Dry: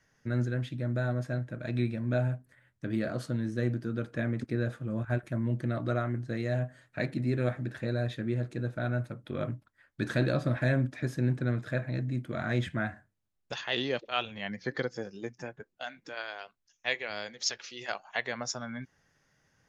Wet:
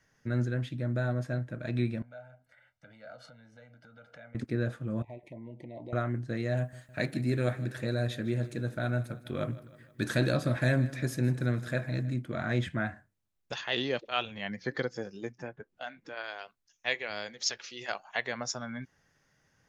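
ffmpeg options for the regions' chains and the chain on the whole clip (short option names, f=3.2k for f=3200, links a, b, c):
-filter_complex "[0:a]asettb=1/sr,asplit=3[a][b][c];[a]atrim=end=2.024[d];[b]atrim=start=2.02:end=4.35,asetpts=PTS-STARTPTS,afade=t=in:d=0.004:c=qsin,afade=t=out:st=2.326:d=0.004:c=qsin,acompressor=threshold=-45dB:ratio=5:attack=3.2:release=140:knee=1:detection=peak,acrossover=split=380 5600:gain=0.178 1 0.2[e][f][g];[e][f][g]amix=inputs=3:normalize=0,aecho=1:1:1.4:0.94,atrim=end_sample=102753[h];[c]atrim=start=4.346[i];[d][h]acrossfade=d=0.004:c1=hsin:c2=qsin[j];[j][i]acrossfade=d=0.004:c1=qsin:c2=hsin,asettb=1/sr,asplit=3[k][l][m];[k]atrim=end=5.024[n];[l]atrim=start=5.02:end=5.93,asetpts=PTS-STARTPTS,afade=t=in:d=0.004:c=qsin,afade=t=out:st=0.906:d=0.004:c=qsin,acompressor=threshold=-34dB:ratio=5:attack=3.2:release=140:knee=1:detection=peak,asuperstop=centerf=1400:order=12:qfactor=1.5,bass=f=250:g=-11,treble=f=4k:g=-15[o];[m]atrim=start=5.926[p];[n][o]acrossfade=d=0.004:c1=hsin:c2=qsin[q];[q][p]acrossfade=d=0.004:c1=qsin:c2=hsin,asettb=1/sr,asplit=3[r][s][t];[r]atrim=end=6.574[u];[s]atrim=start=6.57:end=12.14,asetpts=PTS-STARTPTS,afade=t=in:d=0.004:c=qsin,afade=t=out:st=5.566:d=0.004:c=qsin,aemphasis=mode=production:type=50kf,aecho=1:1:158|316|474|632|790:0.126|0.068|0.0367|0.0198|0.0107,atrim=end_sample=245637[v];[t]atrim=start=12.136[w];[u][v]acrossfade=d=0.004:c1=hsin:c2=qsin[x];[x][w]acrossfade=d=0.004:c1=qsin:c2=hsin,asettb=1/sr,asplit=3[y][z][aa];[y]atrim=end=15.324[ab];[z]atrim=start=15.32:end=16.24,asetpts=PTS-STARTPTS,afade=t=in:d=0.004:c=qsin,afade=t=out:st=0.916:d=0.004:c=qsin,lowpass=f=2.7k:p=1,acompressor=mode=upward:threshold=-56dB:ratio=2.5:attack=3.2:release=140:knee=2.83:detection=peak[ac];[aa]atrim=start=16.236[ad];[ab][ac]acrossfade=d=0.004:c1=hsin:c2=qsin[ae];[ae][ad]acrossfade=d=0.004:c1=qsin:c2=hsin"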